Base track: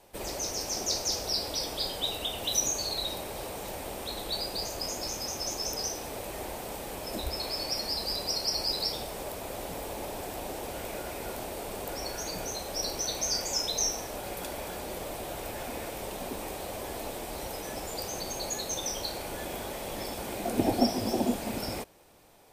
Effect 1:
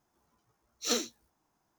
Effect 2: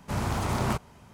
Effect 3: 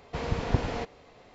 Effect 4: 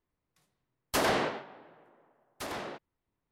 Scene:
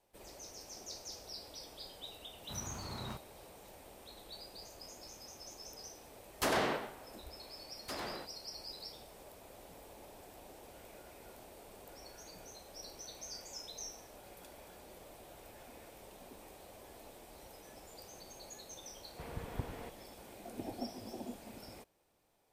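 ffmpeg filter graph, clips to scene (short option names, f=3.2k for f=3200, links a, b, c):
-filter_complex "[0:a]volume=-17dB[a];[2:a]equalizer=f=11k:t=o:w=0.77:g=-6[b];[3:a]acrossover=split=3400[c][d];[d]acompressor=threshold=-56dB:ratio=4:attack=1:release=60[e];[c][e]amix=inputs=2:normalize=0[f];[b]atrim=end=1.13,asetpts=PTS-STARTPTS,volume=-17dB,afade=t=in:d=0.004:c=hsin,afade=t=out:st=1.126:d=0.004:c=hsin,adelay=2400[g];[4:a]atrim=end=3.31,asetpts=PTS-STARTPTS,volume=-4.5dB,afade=t=in:d=0.004:c=hsin,afade=t=out:st=3.306:d=0.004:c=hsin,adelay=5480[h];[f]atrim=end=1.34,asetpts=PTS-STARTPTS,volume=-14.5dB,afade=t=in:d=0.004:c=hsin,afade=t=out:st=1.336:d=0.004:c=hsin,adelay=19050[i];[a][g][h][i]amix=inputs=4:normalize=0"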